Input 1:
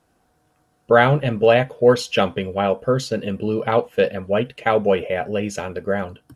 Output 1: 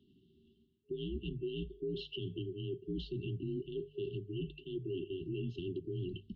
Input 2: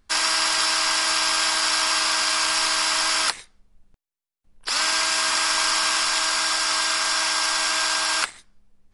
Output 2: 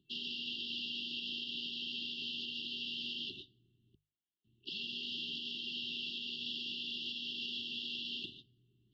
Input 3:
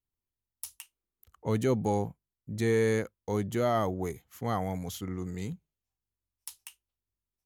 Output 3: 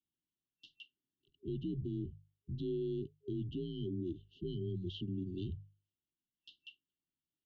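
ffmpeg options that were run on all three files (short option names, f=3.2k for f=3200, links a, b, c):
-af "highpass=f=170:t=q:w=0.5412,highpass=f=170:t=q:w=1.307,lowpass=f=3.5k:t=q:w=0.5176,lowpass=f=3.5k:t=q:w=0.7071,lowpass=f=3.5k:t=q:w=1.932,afreqshift=-80,areverse,acompressor=threshold=-31dB:ratio=16,areverse,afftfilt=real='re*(1-between(b*sr/4096,410,2700))':imag='im*(1-between(b*sr/4096,410,2700))':win_size=4096:overlap=0.75,bandreject=f=50:t=h:w=6,bandreject=f=100:t=h:w=6,bandreject=f=150:t=h:w=6,alimiter=level_in=10dB:limit=-24dB:level=0:latency=1:release=115,volume=-10dB,volume=3dB"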